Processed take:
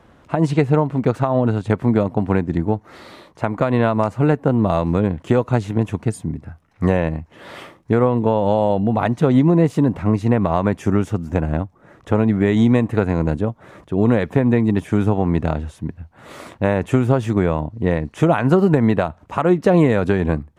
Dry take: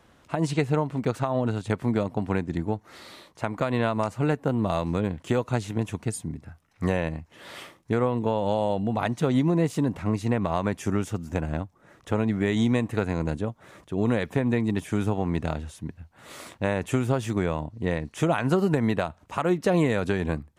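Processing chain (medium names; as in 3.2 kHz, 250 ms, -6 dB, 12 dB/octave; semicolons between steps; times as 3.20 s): treble shelf 2.6 kHz -11.5 dB; trim +8.5 dB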